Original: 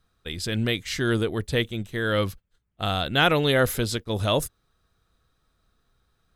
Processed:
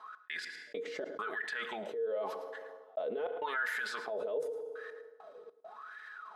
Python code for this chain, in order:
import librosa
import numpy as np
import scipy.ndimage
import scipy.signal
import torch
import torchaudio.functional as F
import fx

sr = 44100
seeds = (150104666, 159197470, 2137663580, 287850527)

y = scipy.signal.sosfilt(scipy.signal.butter(2, 360.0, 'highpass', fs=sr, output='sos'), x)
y = y + 0.64 * np.pad(y, (int(4.7 * sr / 1000.0), 0))[:len(y)]
y = fx.transient(y, sr, attack_db=-9, sustain_db=10)
y = fx.wah_lfo(y, sr, hz=0.87, low_hz=460.0, high_hz=1800.0, q=16.0)
y = fx.step_gate(y, sr, bpm=101, pattern='x.x..xx.xxxxxxx', floor_db=-60.0, edge_ms=4.5)
y = y + 10.0 ** (-20.0 / 20.0) * np.pad(y, (int(109 * sr / 1000.0), 0))[:len(y)]
y = fx.rev_fdn(y, sr, rt60_s=0.87, lf_ratio=0.9, hf_ratio=0.85, size_ms=20.0, drr_db=15.5)
y = fx.env_flatten(y, sr, amount_pct=70)